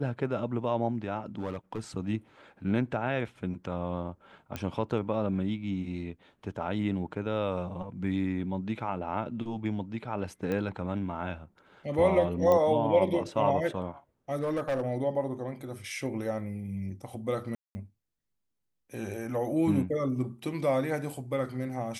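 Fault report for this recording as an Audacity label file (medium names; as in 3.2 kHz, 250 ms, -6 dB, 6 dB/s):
1.260000	1.790000	clipped -28.5 dBFS
4.560000	4.560000	pop -19 dBFS
10.520000	10.520000	pop -20 dBFS
12.520000	12.520000	pop -15 dBFS
14.410000	14.820000	clipped -25.5 dBFS
17.550000	17.750000	dropout 200 ms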